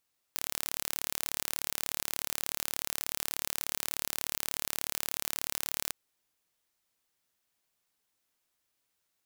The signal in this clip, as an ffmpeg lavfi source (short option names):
-f lavfi -i "aevalsrc='0.531*eq(mod(n,1205),0)':d=5.55:s=44100"